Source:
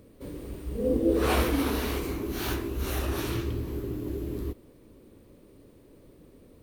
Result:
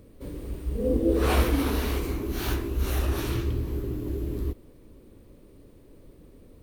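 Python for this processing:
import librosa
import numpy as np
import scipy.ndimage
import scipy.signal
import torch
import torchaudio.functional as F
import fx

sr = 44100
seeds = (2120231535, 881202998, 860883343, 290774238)

y = fx.low_shelf(x, sr, hz=63.0, db=11.0)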